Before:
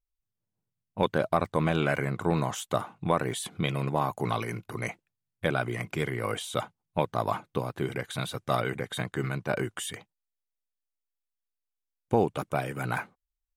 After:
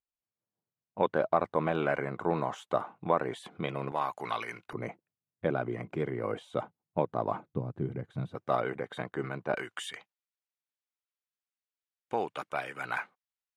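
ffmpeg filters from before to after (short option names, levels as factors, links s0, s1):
-af "asetnsamples=n=441:p=0,asendcmd='3.92 bandpass f 1800;4.73 bandpass f 380;7.49 bandpass f 140;8.35 bandpass f 630;9.54 bandpass f 1900',bandpass=f=690:t=q:w=0.6:csg=0"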